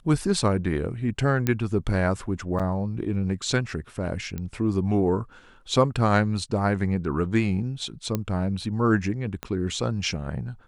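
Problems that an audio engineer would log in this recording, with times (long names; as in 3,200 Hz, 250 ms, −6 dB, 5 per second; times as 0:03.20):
0:01.47: click −10 dBFS
0:02.59–0:02.60: drop-out 6.4 ms
0:04.38: click −19 dBFS
0:08.15: click −12 dBFS
0:09.43: click −16 dBFS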